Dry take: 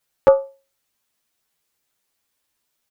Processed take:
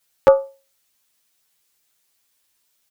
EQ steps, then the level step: treble shelf 2 kHz +7.5 dB; 0.0 dB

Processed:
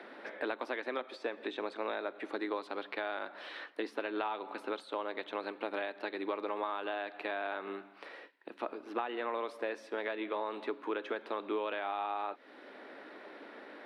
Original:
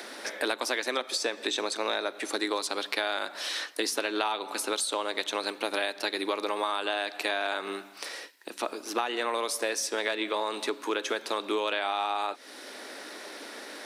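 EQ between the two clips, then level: distance through air 500 m; -4.0 dB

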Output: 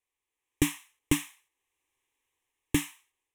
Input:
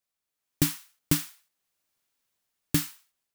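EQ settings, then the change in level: distance through air 70 m; treble shelf 5.9 kHz +7.5 dB; static phaser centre 950 Hz, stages 8; +4.5 dB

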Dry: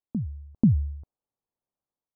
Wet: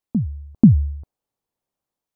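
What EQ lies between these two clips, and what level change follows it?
dynamic bell 320 Hz, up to +4 dB, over -32 dBFS, Q 0.8; +6.5 dB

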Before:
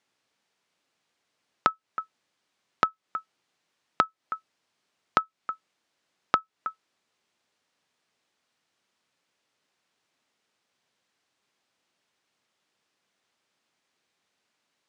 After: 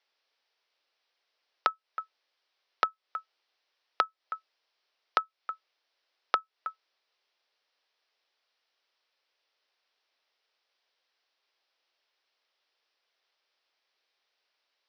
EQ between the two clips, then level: ladder high-pass 360 Hz, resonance 25%; steep low-pass 5.6 kHz 72 dB/octave; treble shelf 2.4 kHz +8.5 dB; 0.0 dB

